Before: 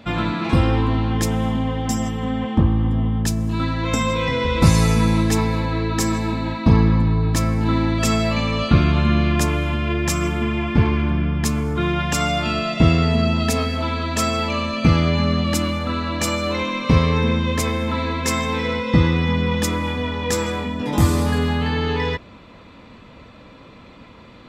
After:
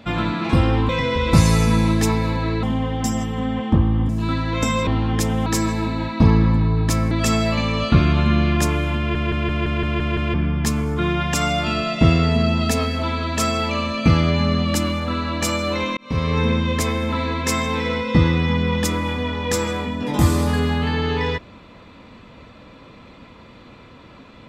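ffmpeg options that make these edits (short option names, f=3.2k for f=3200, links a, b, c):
-filter_complex "[0:a]asplit=16[a][b][c][d][e][f][g][h][i][j][k][l][m][n][o][p];[a]atrim=end=0.892[q];[b]atrim=start=4.178:end=5.922[r];[c]atrim=start=1.478:end=2.942[s];[d]atrim=start=3.398:end=4.182[t];[e]atrim=start=0.888:end=1.482[u];[f]atrim=start=5.918:end=7.572[v];[g]atrim=start=7.898:end=9.942[w];[h]atrim=start=9.768:end=9.942[x];[i]atrim=start=9.768:end=9.942[y];[j]atrim=start=9.768:end=9.942[z];[k]atrim=start=9.768:end=9.942[aa];[l]atrim=start=9.768:end=9.942[ab];[m]atrim=start=9.768:end=9.942[ac];[n]atrim=start=9.768:end=9.942[ad];[o]atrim=start=11.128:end=16.76,asetpts=PTS-STARTPTS,afade=t=out:st=5.628:d=0.004:c=hsin[ae];[p]atrim=start=16.76,asetpts=PTS-STARTPTS,afade=t=in:d=0.44[af];[q][r]acrossfade=d=0.004:c1=hsin:c2=hsin[ag];[ag][s]acrossfade=d=0.004:c1=hsin:c2=hsin[ah];[ah][t]acrossfade=d=0.004:c1=hsin:c2=hsin[ai];[ai][u]acrossfade=d=0.004:c1=hsin:c2=hsin[aj];[aj][v]acrossfade=d=0.004:c1=hsin:c2=hsin[ak];[ak][w]acrossfade=d=0.004:c1=hsin:c2=hsin[al];[al][x]acrossfade=d=0.004:c1=hsin:c2=hsin[am];[am][y]acrossfade=d=0.004:c1=hsin:c2=hsin[an];[an][z]acrossfade=d=0.004:c1=hsin:c2=hsin[ao];[ao][aa]acrossfade=d=0.004:c1=hsin:c2=hsin[ap];[ap][ab]acrossfade=d=0.004:c1=hsin:c2=hsin[aq];[aq][ac]acrossfade=d=0.004:c1=hsin:c2=hsin[ar];[ar][ad]acrossfade=d=0.004:c1=hsin:c2=hsin[as];[ae][af]concat=n=2:v=0:a=1[at];[as][at]acrossfade=d=0.004:c1=hsin:c2=hsin"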